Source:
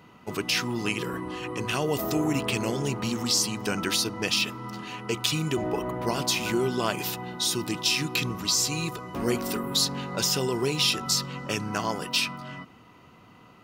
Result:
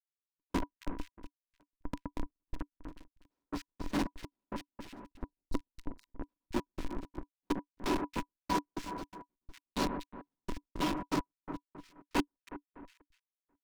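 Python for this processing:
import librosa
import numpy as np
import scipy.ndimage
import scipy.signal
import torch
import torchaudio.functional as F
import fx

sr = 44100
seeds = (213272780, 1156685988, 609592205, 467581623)

y = fx.lower_of_two(x, sr, delay_ms=5.3)
y = fx.schmitt(y, sr, flips_db=-21.0)
y = fx.spec_box(y, sr, start_s=5.13, length_s=0.41, low_hz=960.0, high_hz=3800.0, gain_db=-29)
y = fx.echo_alternate(y, sr, ms=122, hz=1800.0, feedback_pct=61, wet_db=-7)
y = np.clip(y, -10.0 ** (-31.0 / 20.0), 10.0 ** (-31.0 / 20.0))
y = fx.rider(y, sr, range_db=4, speed_s=0.5)
y = fx.peak_eq(y, sr, hz=100.0, db=-10.0, octaves=0.96)
y = fx.step_gate(y, sr, bpm=166, pattern='x.x...x..xx', floor_db=-60.0, edge_ms=4.5)
y = fx.high_shelf(y, sr, hz=10000.0, db=-10.5)
y = fx.small_body(y, sr, hz=(290.0, 980.0), ring_ms=75, db=15)
y = y * 10.0 ** (1.0 / 20.0)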